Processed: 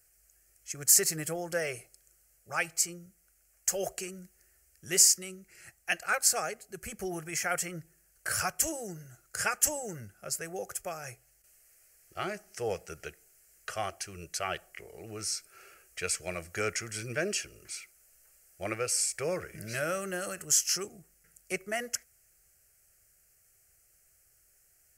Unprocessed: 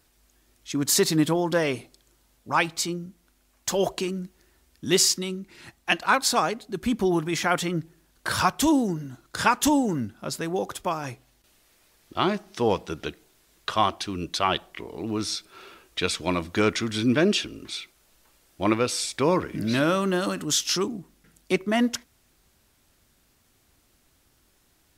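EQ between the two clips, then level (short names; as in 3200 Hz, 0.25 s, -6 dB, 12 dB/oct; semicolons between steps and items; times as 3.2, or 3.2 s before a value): high shelf 2800 Hz +11.5 dB; bell 7500 Hz +3.5 dB 0.63 oct; fixed phaser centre 990 Hz, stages 6; -8.0 dB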